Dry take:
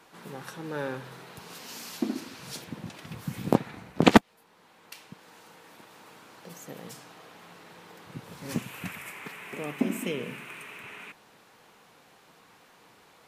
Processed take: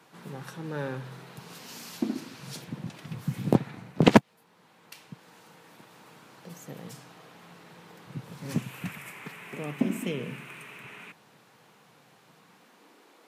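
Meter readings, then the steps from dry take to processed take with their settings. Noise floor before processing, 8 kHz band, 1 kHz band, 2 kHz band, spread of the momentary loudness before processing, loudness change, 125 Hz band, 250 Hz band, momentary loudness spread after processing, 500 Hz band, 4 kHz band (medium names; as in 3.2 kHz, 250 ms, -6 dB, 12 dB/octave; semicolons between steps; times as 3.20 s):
-59 dBFS, -2.5 dB, -2.0 dB, -2.5 dB, 22 LU, 0.0 dB, +4.0 dB, +0.5 dB, 23 LU, 0.0 dB, -2.0 dB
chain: high-pass sweep 130 Hz -> 290 Hz, 12.35–12.94 s; loudspeaker Doppler distortion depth 0.33 ms; trim -2 dB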